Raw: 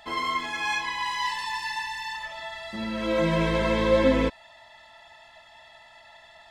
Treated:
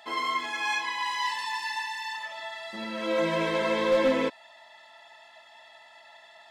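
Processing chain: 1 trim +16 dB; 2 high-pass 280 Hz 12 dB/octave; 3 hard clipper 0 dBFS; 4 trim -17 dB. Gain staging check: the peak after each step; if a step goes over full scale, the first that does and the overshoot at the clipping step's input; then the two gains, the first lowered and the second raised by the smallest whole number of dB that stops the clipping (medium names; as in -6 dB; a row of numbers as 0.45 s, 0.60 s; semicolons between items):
+6.5 dBFS, +6.0 dBFS, 0.0 dBFS, -17.0 dBFS; step 1, 6.0 dB; step 1 +10 dB, step 4 -11 dB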